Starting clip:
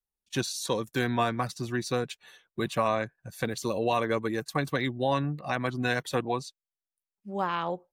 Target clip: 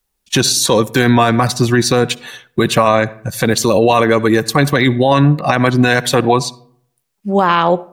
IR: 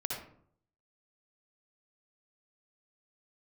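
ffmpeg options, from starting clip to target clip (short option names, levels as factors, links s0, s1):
-filter_complex "[0:a]asplit=2[s0][s1];[1:a]atrim=start_sample=2205[s2];[s1][s2]afir=irnorm=-1:irlink=0,volume=0.0708[s3];[s0][s3]amix=inputs=2:normalize=0,alimiter=level_in=11.2:limit=0.891:release=50:level=0:latency=1,volume=0.891"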